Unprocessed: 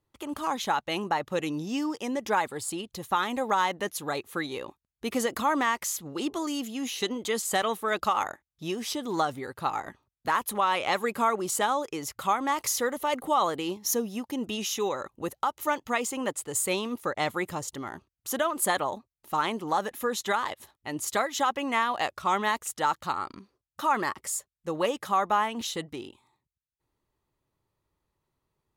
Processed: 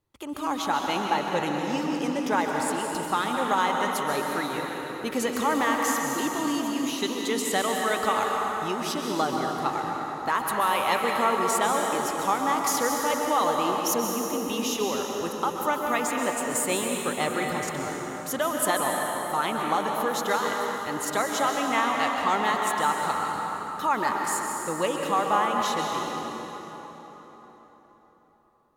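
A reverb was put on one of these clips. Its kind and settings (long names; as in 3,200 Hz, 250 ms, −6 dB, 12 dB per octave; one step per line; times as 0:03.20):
dense smooth reverb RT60 4.4 s, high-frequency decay 0.65×, pre-delay 115 ms, DRR 0 dB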